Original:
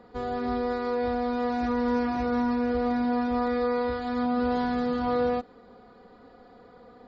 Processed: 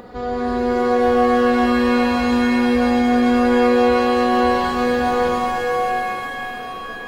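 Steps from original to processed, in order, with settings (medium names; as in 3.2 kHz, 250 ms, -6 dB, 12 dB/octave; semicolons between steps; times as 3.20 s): upward compressor, threshold -37 dBFS; pitch-shifted reverb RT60 3.2 s, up +7 st, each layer -2 dB, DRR 1.5 dB; trim +4.5 dB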